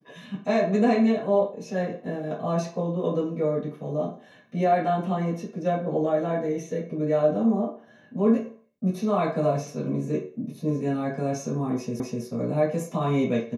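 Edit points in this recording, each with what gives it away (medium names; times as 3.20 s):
12.00 s: repeat of the last 0.25 s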